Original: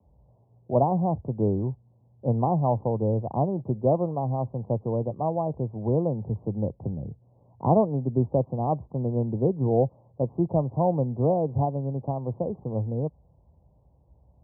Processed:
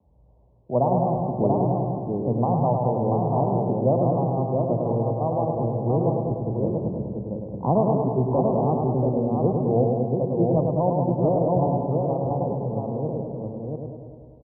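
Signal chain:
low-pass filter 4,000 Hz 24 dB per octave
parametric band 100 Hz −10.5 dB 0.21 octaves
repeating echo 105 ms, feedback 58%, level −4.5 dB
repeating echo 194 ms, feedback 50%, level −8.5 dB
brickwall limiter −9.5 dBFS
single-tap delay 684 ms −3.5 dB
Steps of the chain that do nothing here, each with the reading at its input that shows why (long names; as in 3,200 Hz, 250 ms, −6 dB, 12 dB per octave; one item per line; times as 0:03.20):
low-pass filter 4,000 Hz: nothing at its input above 1,100 Hz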